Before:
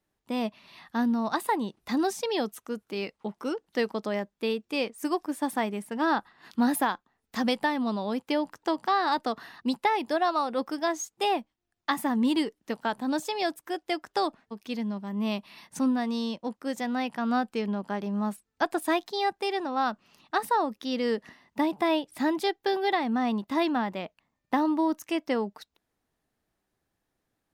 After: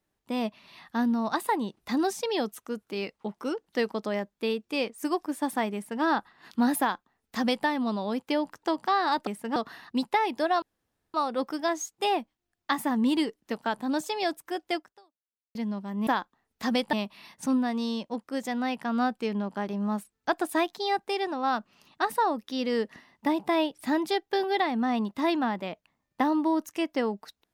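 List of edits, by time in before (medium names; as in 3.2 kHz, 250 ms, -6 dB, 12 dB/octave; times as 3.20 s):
5.74–6.03 s: copy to 9.27 s
6.80–7.66 s: copy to 15.26 s
10.33 s: insert room tone 0.52 s
13.96–14.74 s: fade out exponential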